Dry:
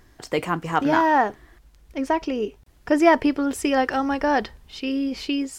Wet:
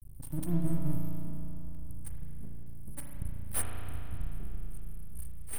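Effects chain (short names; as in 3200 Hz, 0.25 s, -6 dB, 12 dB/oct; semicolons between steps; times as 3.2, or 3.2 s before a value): brick-wall FIR band-stop 180–8400 Hz; half-wave rectifier; spring tank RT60 3.1 s, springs 35 ms, chirp 65 ms, DRR -0.5 dB; gain +8.5 dB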